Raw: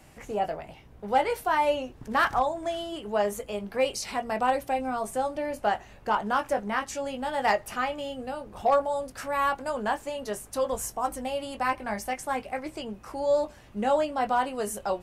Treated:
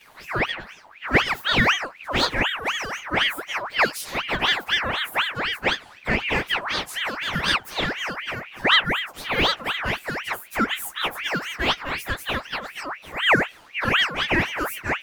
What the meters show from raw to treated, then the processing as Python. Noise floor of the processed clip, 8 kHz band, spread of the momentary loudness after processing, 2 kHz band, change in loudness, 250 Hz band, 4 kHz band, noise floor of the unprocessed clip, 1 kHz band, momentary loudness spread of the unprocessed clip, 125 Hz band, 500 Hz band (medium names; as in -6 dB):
-48 dBFS, +1.5 dB, 10 LU, +12.5 dB, +5.5 dB, +4.0 dB, +17.0 dB, -51 dBFS, -0.5 dB, 10 LU, +13.0 dB, -3.0 dB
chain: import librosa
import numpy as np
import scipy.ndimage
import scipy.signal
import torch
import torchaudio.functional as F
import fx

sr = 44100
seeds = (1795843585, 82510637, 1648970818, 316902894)

y = fx.partial_stretch(x, sr, pct=110)
y = fx.ring_lfo(y, sr, carrier_hz=1700.0, swing_pct=55, hz=4.0)
y = F.gain(torch.from_numpy(y), 9.0).numpy()